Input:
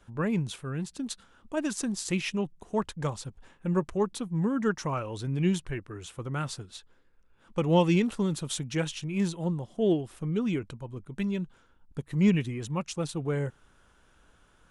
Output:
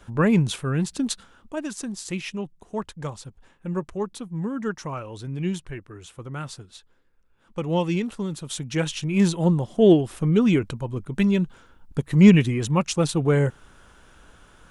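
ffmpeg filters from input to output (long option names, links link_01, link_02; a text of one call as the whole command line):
ffmpeg -i in.wav -af "volume=20.5dB,afade=type=out:start_time=1.03:duration=0.58:silence=0.298538,afade=type=in:start_time=8.43:duration=0.98:silence=0.281838" out.wav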